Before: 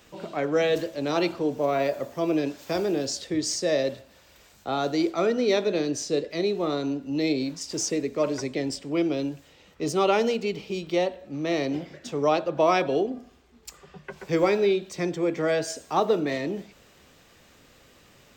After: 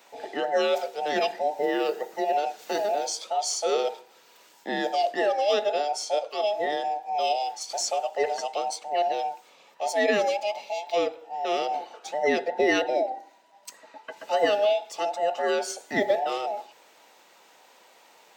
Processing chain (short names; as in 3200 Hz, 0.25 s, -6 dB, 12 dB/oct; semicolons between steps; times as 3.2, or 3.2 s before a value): band inversion scrambler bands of 1000 Hz; Bessel high-pass 280 Hz, order 4